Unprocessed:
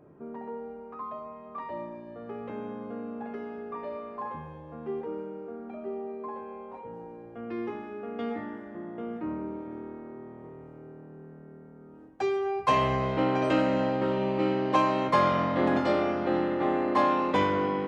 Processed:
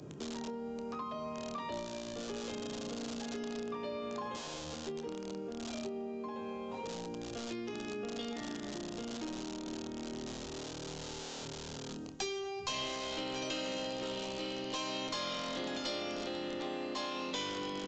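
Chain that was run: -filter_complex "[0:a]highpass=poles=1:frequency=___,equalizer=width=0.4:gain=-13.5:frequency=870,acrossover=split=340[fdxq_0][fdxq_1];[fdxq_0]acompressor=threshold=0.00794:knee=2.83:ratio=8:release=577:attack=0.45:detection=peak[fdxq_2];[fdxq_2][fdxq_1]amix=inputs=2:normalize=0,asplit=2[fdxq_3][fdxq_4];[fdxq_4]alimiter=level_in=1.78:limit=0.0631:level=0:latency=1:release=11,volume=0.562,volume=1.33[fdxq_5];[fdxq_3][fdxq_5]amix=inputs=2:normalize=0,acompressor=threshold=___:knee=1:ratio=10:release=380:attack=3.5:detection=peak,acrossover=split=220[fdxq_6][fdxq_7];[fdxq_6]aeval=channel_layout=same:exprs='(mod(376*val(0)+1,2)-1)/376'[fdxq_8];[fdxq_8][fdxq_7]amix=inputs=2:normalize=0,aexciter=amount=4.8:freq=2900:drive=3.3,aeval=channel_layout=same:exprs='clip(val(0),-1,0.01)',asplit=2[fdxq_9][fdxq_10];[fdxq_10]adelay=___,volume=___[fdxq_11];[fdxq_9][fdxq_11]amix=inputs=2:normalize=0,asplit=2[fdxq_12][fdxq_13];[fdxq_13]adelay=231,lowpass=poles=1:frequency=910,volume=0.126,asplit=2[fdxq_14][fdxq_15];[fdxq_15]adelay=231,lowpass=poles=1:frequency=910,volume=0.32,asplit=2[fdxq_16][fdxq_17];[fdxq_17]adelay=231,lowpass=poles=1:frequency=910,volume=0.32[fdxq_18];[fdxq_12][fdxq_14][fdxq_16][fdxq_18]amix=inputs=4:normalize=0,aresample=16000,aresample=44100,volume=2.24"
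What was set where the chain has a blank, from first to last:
120, 0.00794, 27, 0.211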